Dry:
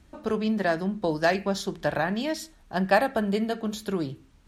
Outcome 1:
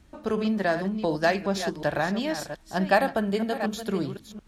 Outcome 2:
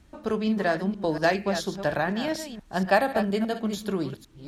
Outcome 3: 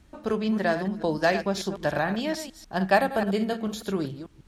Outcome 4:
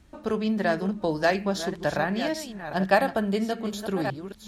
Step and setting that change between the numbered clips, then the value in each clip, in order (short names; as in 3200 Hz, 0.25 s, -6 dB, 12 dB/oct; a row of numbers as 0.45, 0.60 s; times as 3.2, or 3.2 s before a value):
reverse delay, time: 0.366, 0.236, 0.147, 0.586 s